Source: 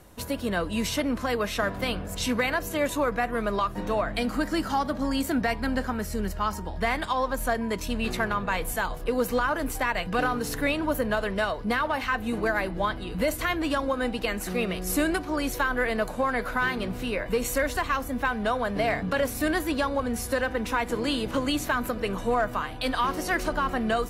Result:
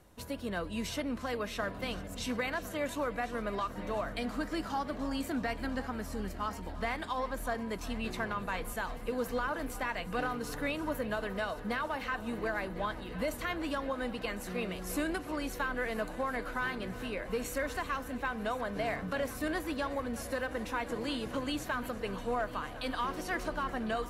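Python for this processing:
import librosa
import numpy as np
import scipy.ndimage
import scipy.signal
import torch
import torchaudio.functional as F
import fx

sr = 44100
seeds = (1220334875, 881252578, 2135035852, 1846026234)

p1 = fx.high_shelf(x, sr, hz=9600.0, db=-4.5)
p2 = p1 + fx.echo_heads(p1, sr, ms=351, heads='first and third', feedback_pct=75, wet_db=-18.5, dry=0)
y = p2 * librosa.db_to_amplitude(-8.5)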